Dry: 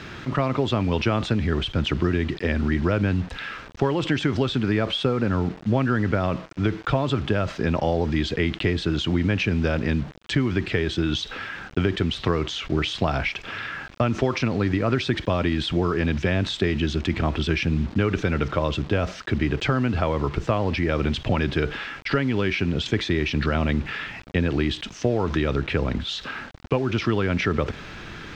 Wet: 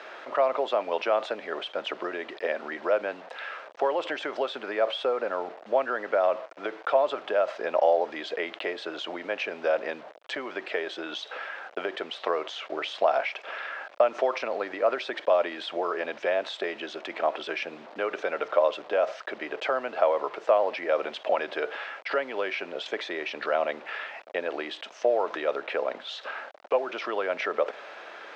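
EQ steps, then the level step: ladder high-pass 520 Hz, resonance 55%; high shelf 3700 Hz -11 dB; +7.5 dB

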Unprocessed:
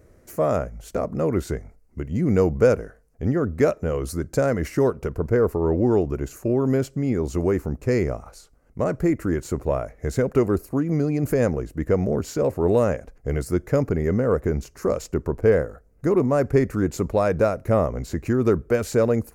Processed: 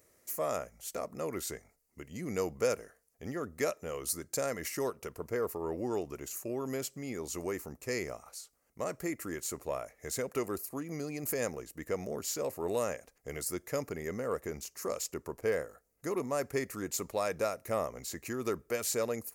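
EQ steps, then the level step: tilt +4 dB/oct; notch 1500 Hz, Q 10; -9.0 dB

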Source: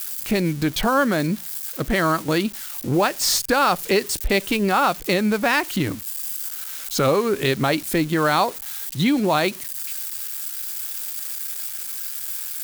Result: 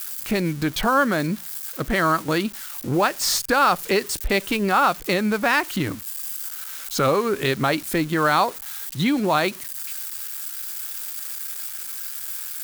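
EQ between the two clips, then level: bell 1300 Hz +4 dB 1.1 oct; -2.0 dB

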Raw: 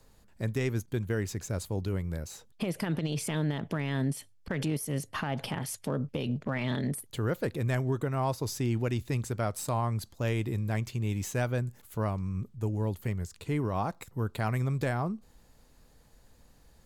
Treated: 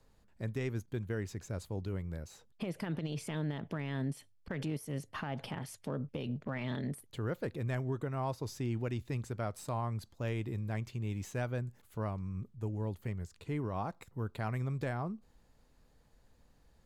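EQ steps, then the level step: high shelf 6000 Hz -8.5 dB; -6.0 dB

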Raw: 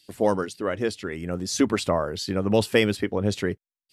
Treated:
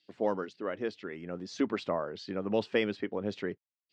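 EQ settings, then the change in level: BPF 190–5900 Hz; air absorption 140 m; -7.5 dB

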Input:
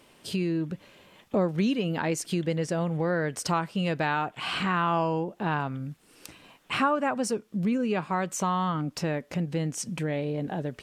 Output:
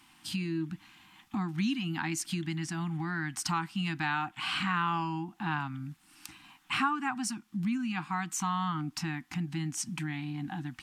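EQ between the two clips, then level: Chebyshev band-stop 330–750 Hz, order 4; dynamic EQ 760 Hz, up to -4 dB, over -39 dBFS, Q 0.8; low shelf 370 Hz -5 dB; 0.0 dB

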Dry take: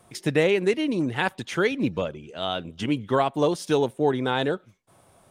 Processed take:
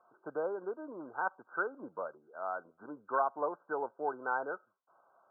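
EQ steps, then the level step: HPF 960 Hz 12 dB/oct; brick-wall FIR low-pass 1600 Hz; air absorption 490 m; 0.0 dB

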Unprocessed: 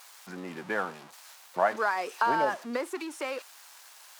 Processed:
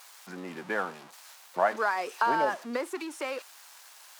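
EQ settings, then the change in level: HPF 140 Hz; 0.0 dB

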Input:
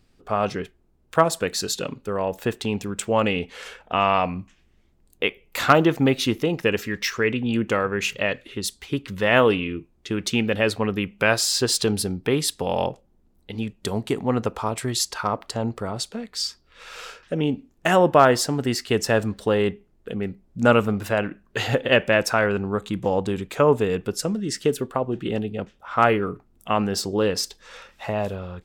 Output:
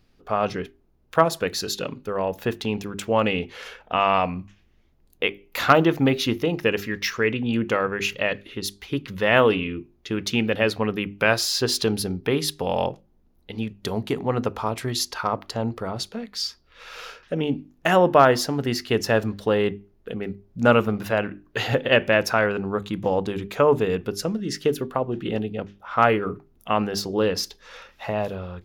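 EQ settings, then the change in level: bell 8100 Hz -13 dB 0.3 oct; notches 50/100/150/200/250/300/350/400 Hz; 0.0 dB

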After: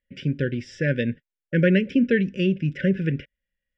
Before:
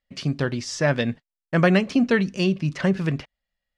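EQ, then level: dynamic EQ 1300 Hz, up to -5 dB, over -38 dBFS, Q 2.4; polynomial smoothing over 25 samples; brick-wall FIR band-stop 590–1400 Hz; 0.0 dB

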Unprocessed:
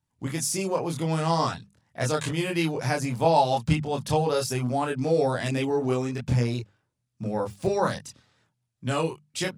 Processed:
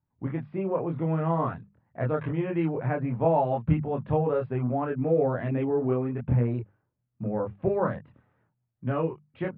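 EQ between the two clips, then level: dynamic EQ 840 Hz, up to -5 dB, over -42 dBFS, Q 4.6; Gaussian blur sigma 4.9 samples; 0.0 dB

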